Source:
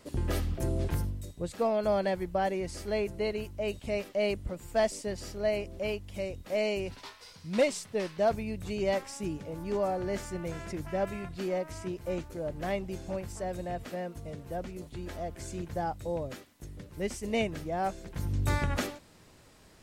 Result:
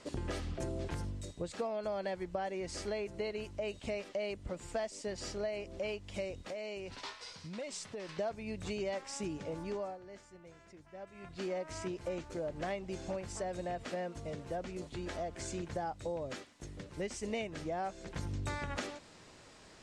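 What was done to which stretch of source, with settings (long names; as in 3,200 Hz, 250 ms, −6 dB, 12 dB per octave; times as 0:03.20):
0:06.47–0:08.09: downward compressor 12 to 1, threshold −40 dBFS
0:09.50–0:11.61: duck −19.5 dB, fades 0.48 s linear
whole clip: low-pass filter 8,300 Hz 24 dB per octave; low-shelf EQ 210 Hz −8 dB; downward compressor 6 to 1, threshold −38 dBFS; level +3 dB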